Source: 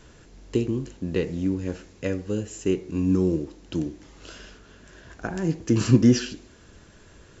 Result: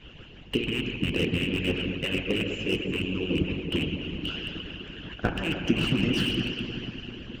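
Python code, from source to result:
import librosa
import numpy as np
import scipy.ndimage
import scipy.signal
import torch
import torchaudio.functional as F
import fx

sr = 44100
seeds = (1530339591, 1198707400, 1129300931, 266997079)

p1 = fx.rattle_buzz(x, sr, strikes_db=-26.0, level_db=-27.0)
p2 = fx.lowpass_res(p1, sr, hz=2900.0, q=12.0)
p3 = fx.over_compress(p2, sr, threshold_db=-25.0, ratio=-0.5)
p4 = p2 + (p3 * 10.0 ** (-1.0 / 20.0))
p5 = fx.low_shelf(p4, sr, hz=360.0, db=7.5)
p6 = fx.rev_plate(p5, sr, seeds[0], rt60_s=3.8, hf_ratio=0.75, predelay_ms=0, drr_db=-1.5)
p7 = fx.hpss(p6, sr, part='harmonic', gain_db=-15)
p8 = fx.peak_eq(p7, sr, hz=2000.0, db=-11.5, octaves=0.32, at=(3.02, 3.44))
p9 = fx.hpss(p8, sr, part='harmonic', gain_db=-9)
p10 = fx.slew_limit(p9, sr, full_power_hz=210.0)
y = p10 * 10.0 ** (-4.0 / 20.0)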